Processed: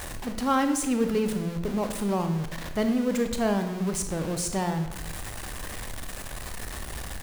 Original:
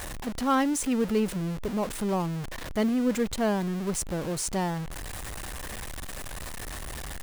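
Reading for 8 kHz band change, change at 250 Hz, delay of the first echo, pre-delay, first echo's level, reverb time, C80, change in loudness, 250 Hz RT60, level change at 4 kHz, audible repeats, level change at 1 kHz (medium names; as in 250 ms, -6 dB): +0.5 dB, +1.0 dB, no echo, 22 ms, no echo, 0.85 s, 11.0 dB, +1.0 dB, 1.0 s, +1.0 dB, no echo, +1.0 dB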